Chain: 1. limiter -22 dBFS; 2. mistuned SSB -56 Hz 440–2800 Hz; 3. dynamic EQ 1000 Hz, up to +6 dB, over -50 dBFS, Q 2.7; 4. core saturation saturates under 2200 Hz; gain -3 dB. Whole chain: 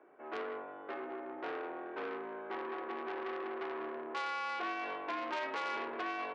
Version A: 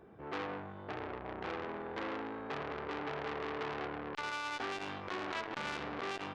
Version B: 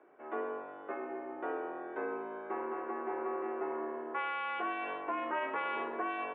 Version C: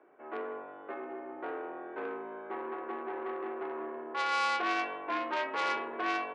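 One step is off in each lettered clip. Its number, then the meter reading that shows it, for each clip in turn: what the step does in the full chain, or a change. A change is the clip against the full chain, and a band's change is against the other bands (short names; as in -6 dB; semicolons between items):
2, 4 kHz band +3.5 dB; 4, crest factor change -2.0 dB; 1, mean gain reduction 1.5 dB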